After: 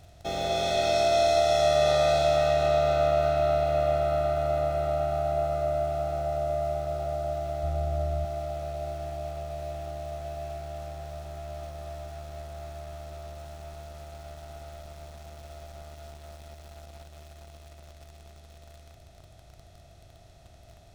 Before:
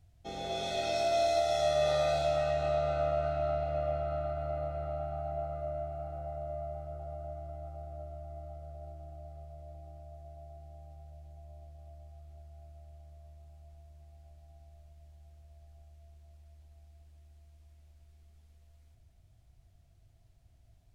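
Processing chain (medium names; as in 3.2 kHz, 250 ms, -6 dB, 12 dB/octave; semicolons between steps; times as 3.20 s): spectral levelling over time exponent 0.6; 7.63–8.25 s: bass shelf 150 Hz +10.5 dB; in parallel at -3 dB: small samples zeroed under -43.5 dBFS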